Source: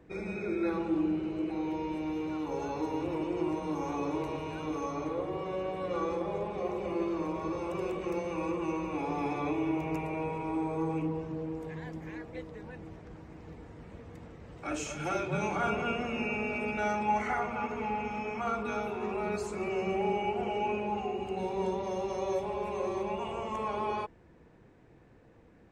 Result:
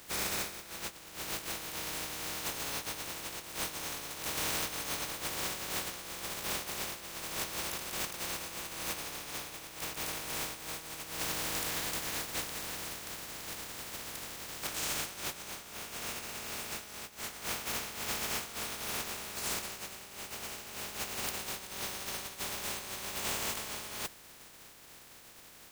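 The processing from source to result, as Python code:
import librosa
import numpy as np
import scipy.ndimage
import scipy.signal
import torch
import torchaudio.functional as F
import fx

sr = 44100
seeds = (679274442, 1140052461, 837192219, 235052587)

y = fx.spec_flatten(x, sr, power=0.14)
y = fx.over_compress(y, sr, threshold_db=-38.0, ratio=-0.5)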